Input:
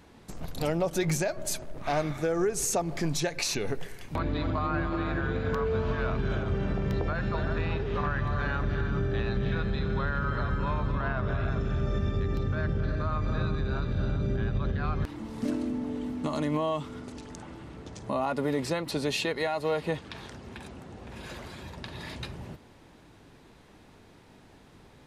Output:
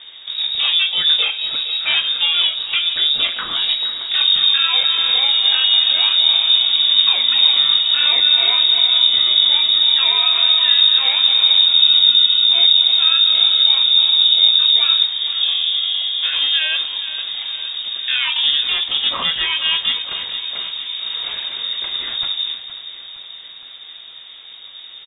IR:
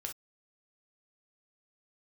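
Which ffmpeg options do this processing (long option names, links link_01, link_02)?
-filter_complex "[0:a]equalizer=frequency=84:width_type=o:width=2:gain=11.5,asplit=2[link_01][link_02];[link_02]acompressor=threshold=-31dB:ratio=6,volume=-1dB[link_03];[link_01][link_03]amix=inputs=2:normalize=0,crystalizer=i=2:c=0,asplit=2[link_04][link_05];[link_05]asetrate=88200,aresample=44100,atempo=0.5,volume=0dB[link_06];[link_04][link_06]amix=inputs=2:normalize=0,aecho=1:1:465|930|1395|1860|2325|2790:0.224|0.132|0.0779|0.046|0.0271|0.016,asplit=2[link_07][link_08];[1:a]atrim=start_sample=2205[link_09];[link_08][link_09]afir=irnorm=-1:irlink=0,volume=0dB[link_10];[link_07][link_10]amix=inputs=2:normalize=0,lowpass=frequency=3200:width_type=q:width=0.5098,lowpass=frequency=3200:width_type=q:width=0.6013,lowpass=frequency=3200:width_type=q:width=0.9,lowpass=frequency=3200:width_type=q:width=2.563,afreqshift=-3800,volume=-2.5dB"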